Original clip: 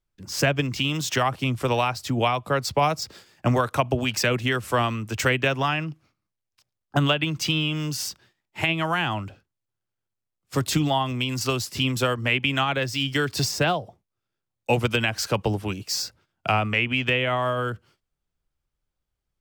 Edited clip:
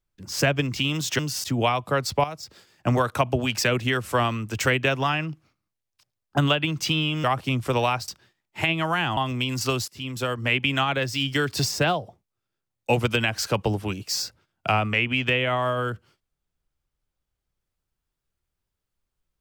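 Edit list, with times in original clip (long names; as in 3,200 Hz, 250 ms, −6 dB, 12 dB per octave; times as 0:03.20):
0:01.19–0:02.03: swap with 0:07.83–0:08.08
0:02.83–0:03.57: fade in linear, from −13.5 dB
0:09.17–0:10.97: remove
0:11.68–0:12.32: fade in, from −19 dB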